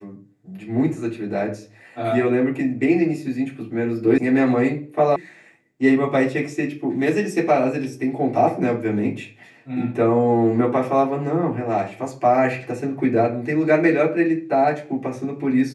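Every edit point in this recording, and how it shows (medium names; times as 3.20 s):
4.18 s: sound stops dead
5.16 s: sound stops dead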